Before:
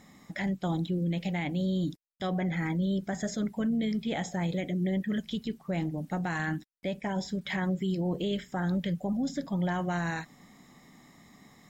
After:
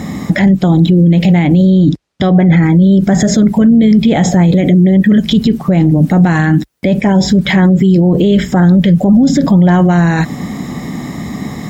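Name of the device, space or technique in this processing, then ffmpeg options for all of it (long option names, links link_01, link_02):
mastering chain: -filter_complex "[0:a]highpass=frequency=45:width=0.5412,highpass=frequency=45:width=1.3066,equalizer=frequency=900:width_type=o:width=1.5:gain=-2,acompressor=threshold=-33dB:ratio=3,tiltshelf=frequency=1300:gain=3.5,alimiter=level_in=33dB:limit=-1dB:release=50:level=0:latency=1,asettb=1/sr,asplit=3[link_01][link_02][link_03];[link_01]atrim=end=1.704[link_04];[link_02]atrim=start=1.7:end=2.63,asetpts=PTS-STARTPTS,afade=type=in:duration=0.004:curve=qsin,afade=type=out:start_time=0.926:duration=0.004:curve=qsin,lowpass=5800[link_05];[link_03]atrim=start=2.626[link_06];[link_04][link_05]acrossfade=duration=0.004:curve1=hsin:curve2=qsin[link_07];[link_07][link_06]acrossfade=duration=0.004:curve1=qsin:curve2=hsin,lowshelf=frequency=390:gain=4.5,volume=-4dB"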